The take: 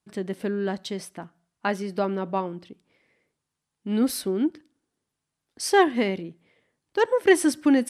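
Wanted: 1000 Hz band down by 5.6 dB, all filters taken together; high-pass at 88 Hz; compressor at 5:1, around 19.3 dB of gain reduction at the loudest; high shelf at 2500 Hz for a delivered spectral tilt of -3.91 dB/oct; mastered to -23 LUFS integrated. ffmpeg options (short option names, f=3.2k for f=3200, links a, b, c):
-af "highpass=88,equalizer=f=1k:t=o:g=-8.5,highshelf=f=2.5k:g=4.5,acompressor=threshold=-36dB:ratio=5,volume=16.5dB"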